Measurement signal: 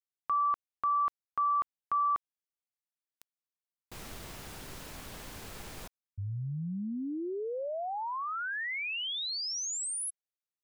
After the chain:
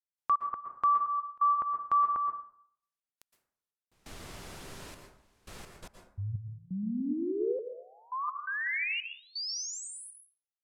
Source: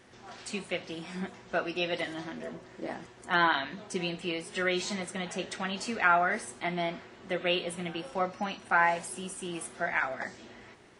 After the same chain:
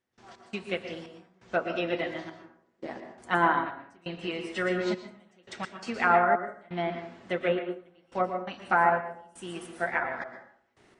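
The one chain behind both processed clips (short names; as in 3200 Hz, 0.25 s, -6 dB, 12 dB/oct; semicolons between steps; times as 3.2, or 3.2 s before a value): treble ducked by the level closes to 1200 Hz, closed at -24.5 dBFS; step gate ".x.xxx..xxxxx.." 85 bpm -24 dB; plate-style reverb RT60 0.63 s, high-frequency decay 0.5×, pre-delay 0.105 s, DRR 4.5 dB; upward expander 1.5:1, over -40 dBFS; gain +5 dB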